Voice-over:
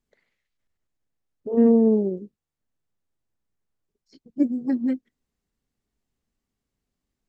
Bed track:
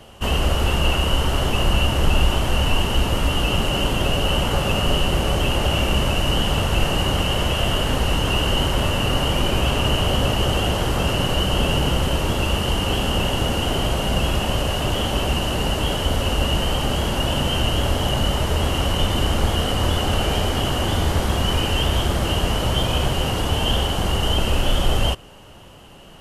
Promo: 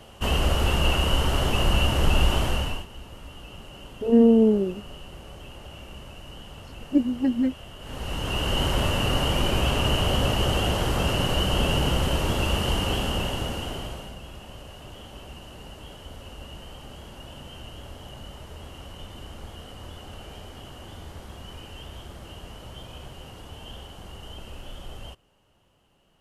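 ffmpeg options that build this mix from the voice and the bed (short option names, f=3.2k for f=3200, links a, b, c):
-filter_complex "[0:a]adelay=2550,volume=0.5dB[a];[1:a]volume=16dB,afade=t=out:st=2.42:d=0.44:silence=0.105925,afade=t=in:st=7.79:d=0.91:silence=0.112202,afade=t=out:st=12.75:d=1.42:silence=0.133352[b];[a][b]amix=inputs=2:normalize=0"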